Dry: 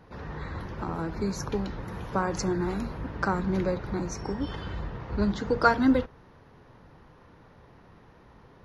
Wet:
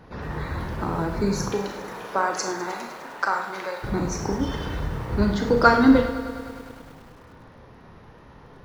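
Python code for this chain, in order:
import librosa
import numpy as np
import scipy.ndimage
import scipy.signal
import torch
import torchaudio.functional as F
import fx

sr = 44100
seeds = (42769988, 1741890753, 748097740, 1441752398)

y = fx.highpass(x, sr, hz=fx.line((1.48, 320.0), (3.82, 900.0)), slope=12, at=(1.48, 3.82), fade=0.02)
y = fx.rev_schroeder(y, sr, rt60_s=0.5, comb_ms=26, drr_db=4.5)
y = fx.echo_crushed(y, sr, ms=102, feedback_pct=80, bits=8, wet_db=-14.0)
y = y * 10.0 ** (5.0 / 20.0)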